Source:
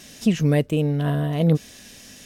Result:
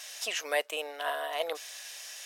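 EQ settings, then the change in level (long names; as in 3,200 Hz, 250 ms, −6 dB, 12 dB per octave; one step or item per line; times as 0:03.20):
inverse Chebyshev high-pass filter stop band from 150 Hz, stop band 70 dB
+1.5 dB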